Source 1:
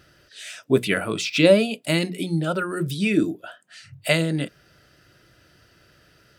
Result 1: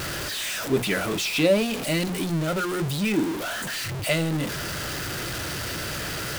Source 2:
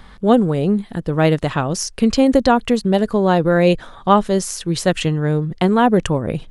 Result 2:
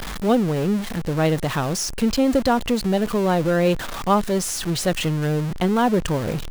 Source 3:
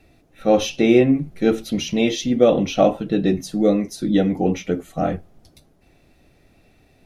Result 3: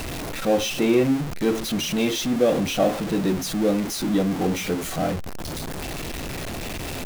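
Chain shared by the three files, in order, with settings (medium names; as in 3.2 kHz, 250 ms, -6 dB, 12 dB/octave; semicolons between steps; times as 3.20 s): jump at every zero crossing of -18.5 dBFS; trim -6.5 dB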